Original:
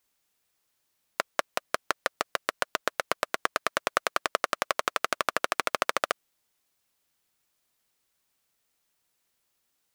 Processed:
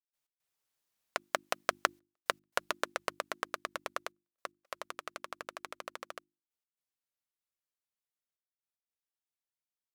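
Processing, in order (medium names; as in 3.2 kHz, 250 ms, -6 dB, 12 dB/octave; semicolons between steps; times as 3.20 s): Doppler pass-by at 2.01 s, 12 m/s, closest 6.1 m; trance gate ".x.xxxxxxxxxxxx." 113 bpm -60 dB; hum notches 50/100/150/200/250/300/350 Hz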